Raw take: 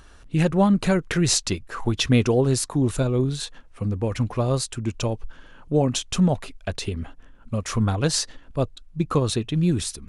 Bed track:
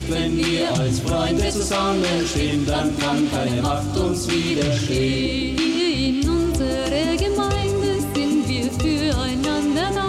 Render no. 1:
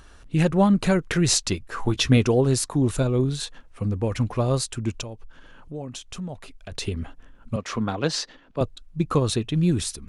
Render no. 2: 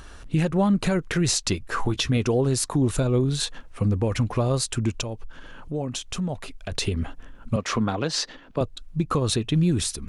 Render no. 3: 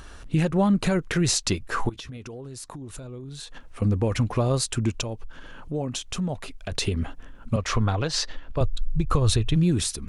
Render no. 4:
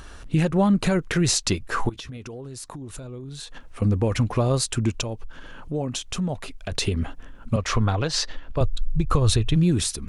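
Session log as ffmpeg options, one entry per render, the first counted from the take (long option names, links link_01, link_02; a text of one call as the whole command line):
ffmpeg -i in.wav -filter_complex "[0:a]asettb=1/sr,asplit=3[link_01][link_02][link_03];[link_01]atrim=end=1.714[link_04];[link_02]atrim=start=1.71:end=2.17,asetpts=PTS-STARTPTS,afade=type=in:duration=0.004:curve=qsin,afade=type=out:start_time=0.456:duration=0.004:curve=qsin,asplit=2[link_05][link_06];[link_06]adelay=15,volume=-8dB[link_07];[link_05][link_07]amix=inputs=2:normalize=0,atrim=end_sample=20286[link_08];[link_03]atrim=start=2.166[link_09];[link_04][link_08]acrossfade=duration=0.004:curve1=hsin:curve2=qsin[link_10];[link_10][link_09]acrossfade=duration=0.004:curve1=qsin:curve2=hsin,asettb=1/sr,asplit=3[link_11][link_12][link_13];[link_11]atrim=end=5.014[link_14];[link_12]atrim=start=5.01:end=6.72,asetpts=PTS-STARTPTS,afade=type=in:duration=0.004:curve=qsin,afade=type=out:start_time=1.706:duration=0.004:curve=qsin,acompressor=threshold=-42dB:ratio=2:attack=3.2:release=140:knee=1:detection=peak[link_15];[link_13]atrim=start=6.716[link_16];[link_14][link_15]acrossfade=duration=0.004:curve1=hsin:curve2=qsin[link_17];[link_17][link_16]acrossfade=duration=0.004:curve1=qsin:curve2=hsin,asettb=1/sr,asplit=3[link_18][link_19][link_20];[link_18]atrim=end=7.564[link_21];[link_19]atrim=start=7.56:end=8.61,asetpts=PTS-STARTPTS,afade=type=in:duration=0.004:curve=qsin,afade=type=out:start_time=1.046:duration=0.004:curve=qsin,acrossover=split=160 5900:gain=0.178 1 0.126[link_22][link_23][link_24];[link_22][link_23][link_24]amix=inputs=3:normalize=0[link_25];[link_20]atrim=start=8.606[link_26];[link_21][link_25]acrossfade=duration=0.004:curve1=hsin:curve2=qsin[link_27];[link_27][link_26]acrossfade=duration=0.004:curve1=qsin:curve2=hsin" out.wav
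ffmpeg -i in.wav -filter_complex "[0:a]asplit=2[link_01][link_02];[link_02]acompressor=threshold=-28dB:ratio=6,volume=-0.5dB[link_03];[link_01][link_03]amix=inputs=2:normalize=0,alimiter=limit=-13.5dB:level=0:latency=1:release=173" out.wav
ffmpeg -i in.wav -filter_complex "[0:a]asettb=1/sr,asplit=3[link_01][link_02][link_03];[link_01]atrim=end=1.894[link_04];[link_02]atrim=start=1.89:end=3.82,asetpts=PTS-STARTPTS,afade=type=in:duration=0.004:curve=qsin,afade=type=out:start_time=1.926:duration=0.004:curve=qsin,acompressor=threshold=-35dB:ratio=10:attack=3.2:release=140:knee=1:detection=peak[link_05];[link_03]atrim=start=3.816[link_06];[link_04][link_05]acrossfade=duration=0.004:curve1=hsin:curve2=qsin[link_07];[link_07][link_06]acrossfade=duration=0.004:curve1=qsin:curve2=hsin,asplit=3[link_08][link_09][link_10];[link_08]afade=type=out:start_time=7.56:duration=0.02[link_11];[link_09]asubboost=boost=9.5:cutoff=69,afade=type=in:start_time=7.56:duration=0.02,afade=type=out:start_time=9.55:duration=0.02[link_12];[link_10]afade=type=in:start_time=9.55:duration=0.02[link_13];[link_11][link_12][link_13]amix=inputs=3:normalize=0" out.wav
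ffmpeg -i in.wav -af "volume=1.5dB" out.wav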